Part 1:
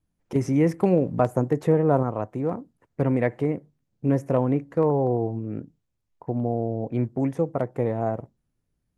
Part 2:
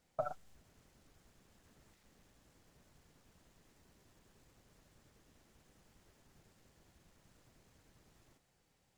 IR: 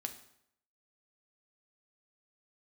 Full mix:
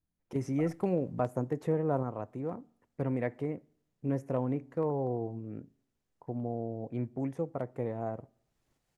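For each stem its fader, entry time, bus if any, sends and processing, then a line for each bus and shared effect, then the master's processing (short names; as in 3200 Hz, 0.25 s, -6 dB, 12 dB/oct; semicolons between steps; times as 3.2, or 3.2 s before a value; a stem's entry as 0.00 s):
-11.0 dB, 0.00 s, send -14 dB, dry
-3.5 dB, 0.40 s, send -23.5 dB, auto duck -19 dB, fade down 1.85 s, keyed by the first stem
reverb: on, RT60 0.75 s, pre-delay 4 ms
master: dry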